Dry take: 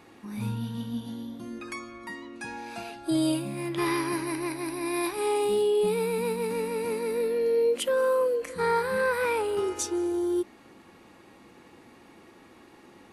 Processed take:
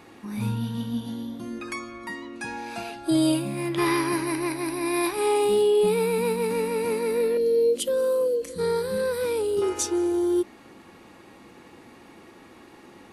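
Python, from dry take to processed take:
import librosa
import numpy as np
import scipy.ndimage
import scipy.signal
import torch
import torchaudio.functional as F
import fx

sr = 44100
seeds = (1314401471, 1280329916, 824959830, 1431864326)

y = fx.band_shelf(x, sr, hz=1300.0, db=-12.5, octaves=2.3, at=(7.37, 9.62))
y = y * librosa.db_to_amplitude(4.0)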